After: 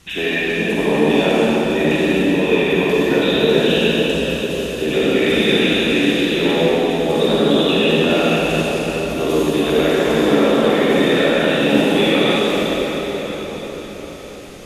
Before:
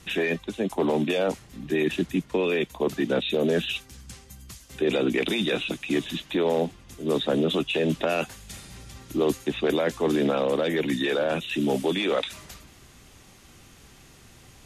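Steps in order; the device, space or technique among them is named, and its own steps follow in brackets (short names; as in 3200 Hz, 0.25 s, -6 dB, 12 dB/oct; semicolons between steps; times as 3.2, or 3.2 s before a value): bell 3000 Hz +2.5 dB 1.6 oct; cathedral (reverb RT60 5.8 s, pre-delay 41 ms, DRR -10 dB)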